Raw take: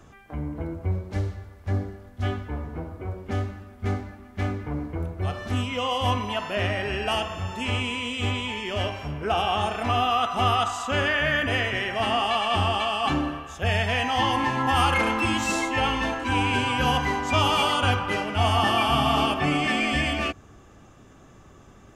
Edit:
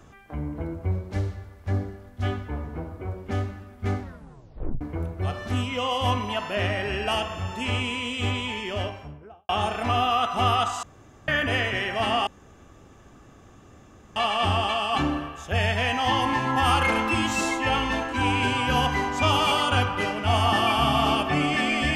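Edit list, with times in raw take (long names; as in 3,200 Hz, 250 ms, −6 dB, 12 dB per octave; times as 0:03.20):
0:04.01: tape stop 0.80 s
0:08.57–0:09.49: fade out and dull
0:10.83–0:11.28: fill with room tone
0:12.27: splice in room tone 1.89 s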